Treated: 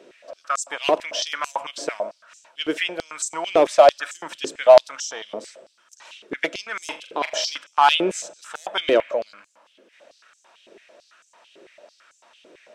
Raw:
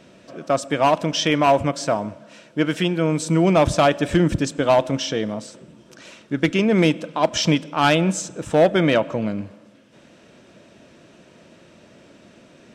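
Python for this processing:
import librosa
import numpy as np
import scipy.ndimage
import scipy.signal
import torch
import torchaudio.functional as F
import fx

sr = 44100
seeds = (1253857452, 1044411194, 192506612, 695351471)

y = fx.room_flutter(x, sr, wall_m=7.1, rt60_s=0.27, at=(6.84, 7.57))
y = fx.filter_held_highpass(y, sr, hz=9.0, low_hz=400.0, high_hz=6900.0)
y = F.gain(torch.from_numpy(y), -4.0).numpy()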